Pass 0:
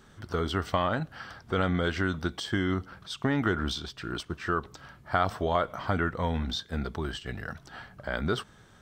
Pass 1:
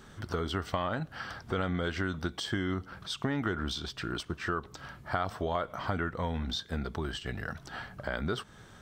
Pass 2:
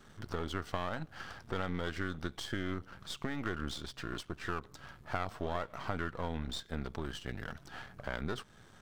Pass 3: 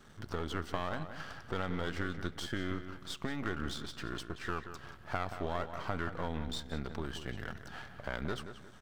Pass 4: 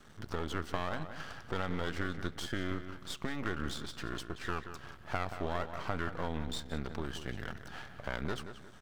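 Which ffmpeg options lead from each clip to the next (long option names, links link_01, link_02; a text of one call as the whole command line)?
ffmpeg -i in.wav -af "acompressor=threshold=-38dB:ratio=2,volume=3.5dB" out.wav
ffmpeg -i in.wav -af "aeval=exprs='if(lt(val(0),0),0.251*val(0),val(0))':channel_layout=same,volume=-2.5dB" out.wav
ffmpeg -i in.wav -filter_complex "[0:a]asplit=2[link_01][link_02];[link_02]adelay=179,lowpass=frequency=4000:poles=1,volume=-10dB,asplit=2[link_03][link_04];[link_04]adelay=179,lowpass=frequency=4000:poles=1,volume=0.35,asplit=2[link_05][link_06];[link_06]adelay=179,lowpass=frequency=4000:poles=1,volume=0.35,asplit=2[link_07][link_08];[link_08]adelay=179,lowpass=frequency=4000:poles=1,volume=0.35[link_09];[link_01][link_03][link_05][link_07][link_09]amix=inputs=5:normalize=0" out.wav
ffmpeg -i in.wav -af "aeval=exprs='max(val(0),0)':channel_layout=same,volume=1dB" out.wav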